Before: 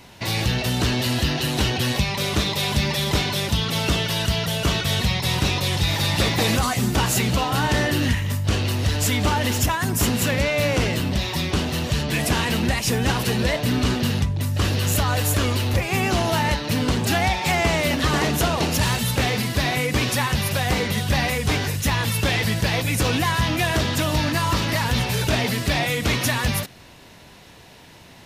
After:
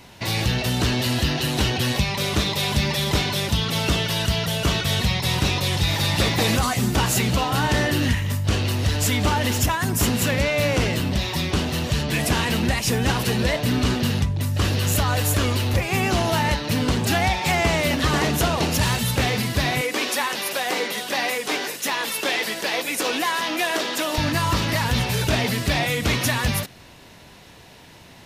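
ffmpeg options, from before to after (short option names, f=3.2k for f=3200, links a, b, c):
-filter_complex "[0:a]asettb=1/sr,asplit=3[a][b][c];[a]atrim=end=19.814[d];[b]atrim=start=19.81:end=24.18,asetpts=PTS-STARTPTS,afade=t=in:d=0.004:c=qsin,afade=t=out:st=4.366:d=0.004:c=qsin,highpass=f=290:w=0.5412,highpass=f=290:w=1.3066[e];[c]atrim=start=24.176[f];[d][e]acrossfade=d=0.004:c1=hsin:c2=qsin[g];[g][f]acrossfade=d=0.004:c1=qsin:c2=hsin"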